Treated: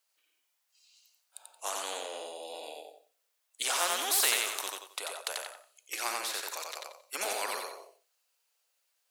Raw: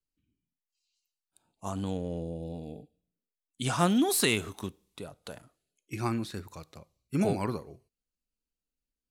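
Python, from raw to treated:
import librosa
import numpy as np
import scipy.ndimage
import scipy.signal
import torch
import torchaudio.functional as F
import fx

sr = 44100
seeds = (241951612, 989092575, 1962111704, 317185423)

p1 = scipy.signal.sosfilt(scipy.signal.butter(6, 550.0, 'highpass', fs=sr, output='sos'), x)
p2 = p1 + fx.echo_feedback(p1, sr, ms=89, feedback_pct=23, wet_db=-4.0, dry=0)
y = fx.spectral_comp(p2, sr, ratio=2.0)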